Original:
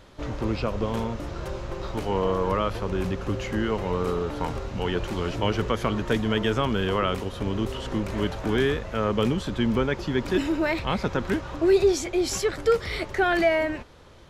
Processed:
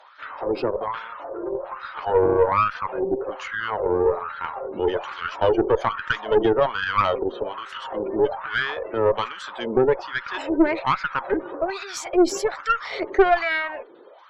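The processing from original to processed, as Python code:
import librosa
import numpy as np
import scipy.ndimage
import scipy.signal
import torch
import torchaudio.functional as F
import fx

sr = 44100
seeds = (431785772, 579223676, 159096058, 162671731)

y = fx.filter_lfo_highpass(x, sr, shape='sine', hz=1.2, low_hz=340.0, high_hz=1500.0, q=5.1)
y = fx.spec_gate(y, sr, threshold_db=-25, keep='strong')
y = fx.tube_stage(y, sr, drive_db=11.0, bias=0.65)
y = F.gain(torch.from_numpy(y), 2.5).numpy()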